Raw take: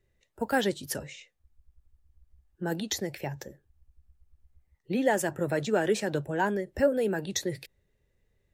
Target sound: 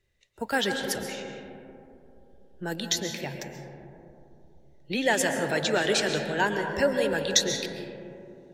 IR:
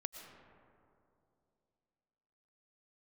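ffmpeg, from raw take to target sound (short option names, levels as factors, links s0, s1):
-filter_complex "[0:a]asetnsamples=n=441:p=0,asendcmd='4.92 equalizer g 15',equalizer=f=3900:w=0.47:g=9[s0];[1:a]atrim=start_sample=2205,asetrate=37926,aresample=44100[s1];[s0][s1]afir=irnorm=-1:irlink=0"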